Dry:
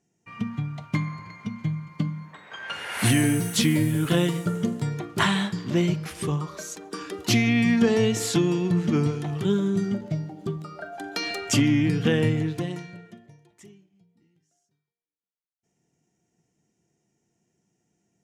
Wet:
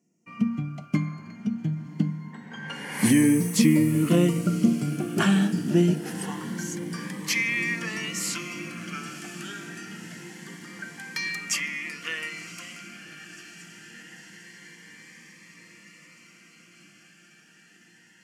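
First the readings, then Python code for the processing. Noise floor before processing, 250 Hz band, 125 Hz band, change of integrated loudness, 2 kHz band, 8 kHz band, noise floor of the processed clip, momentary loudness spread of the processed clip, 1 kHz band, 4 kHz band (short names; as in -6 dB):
-77 dBFS, -0.5 dB, -3.5 dB, -1.0 dB, +1.0 dB, 0.0 dB, -56 dBFS, 22 LU, -4.5 dB, -3.5 dB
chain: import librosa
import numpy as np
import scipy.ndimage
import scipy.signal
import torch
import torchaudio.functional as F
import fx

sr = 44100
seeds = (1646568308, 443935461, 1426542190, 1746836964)

p1 = fx.peak_eq(x, sr, hz=3700.0, db=-11.5, octaves=0.29)
p2 = fx.filter_sweep_highpass(p1, sr, from_hz=210.0, to_hz=1600.0, start_s=5.91, end_s=6.46, q=2.0)
p3 = p2 + fx.echo_diffused(p2, sr, ms=1070, feedback_pct=72, wet_db=-14.0, dry=0)
y = fx.notch_cascade(p3, sr, direction='rising', hz=0.25)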